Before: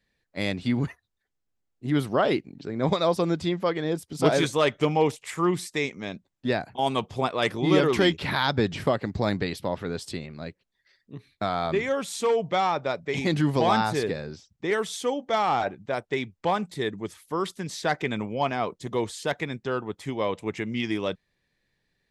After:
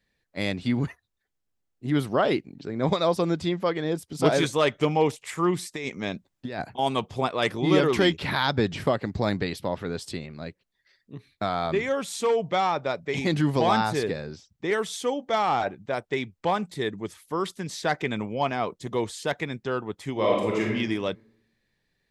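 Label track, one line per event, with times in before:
5.760000	6.720000	compressor with a negative ratio -31 dBFS
20.120000	20.710000	reverb throw, RT60 0.96 s, DRR -3.5 dB

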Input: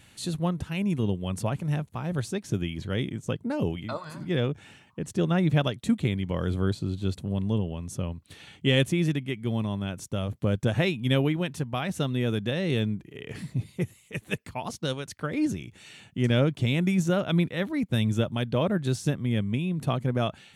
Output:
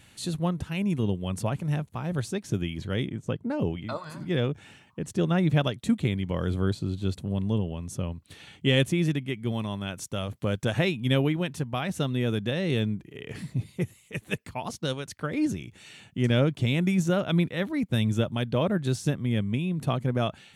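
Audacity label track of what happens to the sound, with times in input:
3.050000	3.860000	treble shelf 3.4 kHz -> 5 kHz -9.5 dB
9.520000	10.790000	tilt shelf lows -3.5 dB, about 630 Hz

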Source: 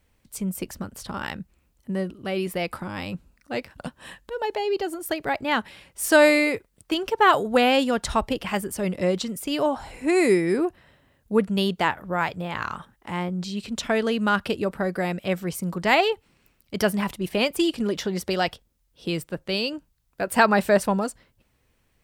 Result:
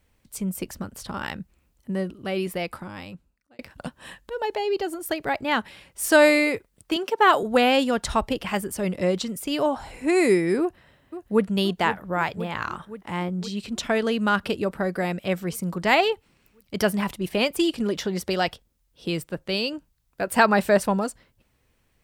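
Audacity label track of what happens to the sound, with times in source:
2.420000	3.590000	fade out
6.960000	7.430000	high-pass 180 Hz 24 dB/octave
10.600000	11.450000	echo throw 520 ms, feedback 70%, level -12 dB

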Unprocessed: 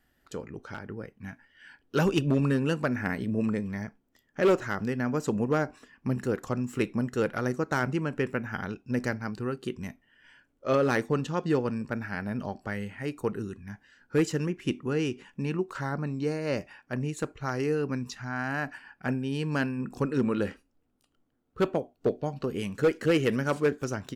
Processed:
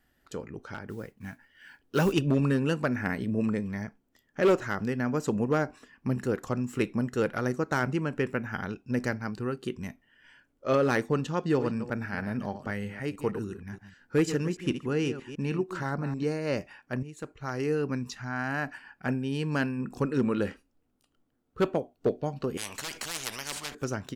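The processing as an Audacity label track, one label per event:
0.880000	2.130000	modulation noise under the signal 25 dB
11.430000	16.230000	chunks repeated in reverse 157 ms, level -10.5 dB
17.030000	17.750000	fade in, from -13.5 dB
22.570000	23.750000	spectrum-flattening compressor 10:1

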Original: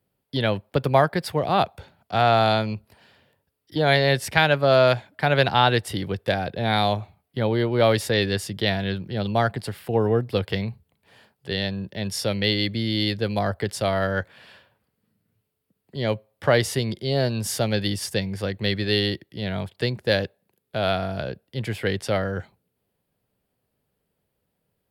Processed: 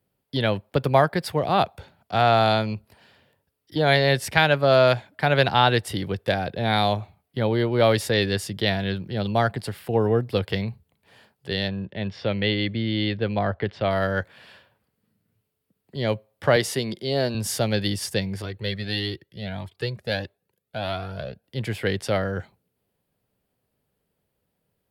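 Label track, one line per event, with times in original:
11.680000	13.910000	low-pass 3.4 kHz 24 dB/octave
16.560000	17.350000	high-pass 160 Hz
18.420000	21.440000	Shepard-style flanger rising 1.6 Hz

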